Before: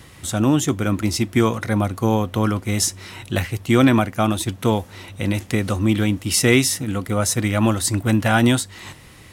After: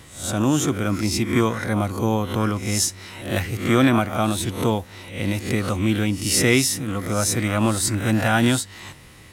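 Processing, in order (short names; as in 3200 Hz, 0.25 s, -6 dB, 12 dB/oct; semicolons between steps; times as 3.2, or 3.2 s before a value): spectral swells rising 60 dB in 0.47 s; gain -3 dB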